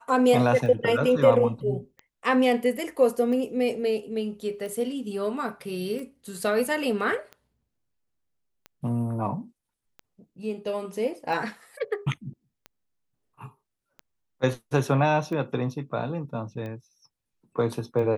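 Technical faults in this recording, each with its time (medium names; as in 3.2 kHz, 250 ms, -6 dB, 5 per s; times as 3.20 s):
tick 45 rpm -26 dBFS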